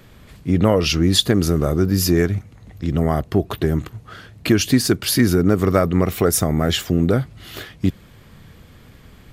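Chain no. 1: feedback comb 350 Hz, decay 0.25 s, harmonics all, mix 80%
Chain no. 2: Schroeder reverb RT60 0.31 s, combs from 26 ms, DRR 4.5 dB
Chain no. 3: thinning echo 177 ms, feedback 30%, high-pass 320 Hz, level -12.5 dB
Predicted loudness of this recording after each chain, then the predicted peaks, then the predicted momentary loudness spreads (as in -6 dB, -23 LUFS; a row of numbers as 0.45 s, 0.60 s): -29.5 LUFS, -17.5 LUFS, -18.5 LUFS; -12.5 dBFS, -1.5 dBFS, -3.0 dBFS; 14 LU, 14 LU, 13 LU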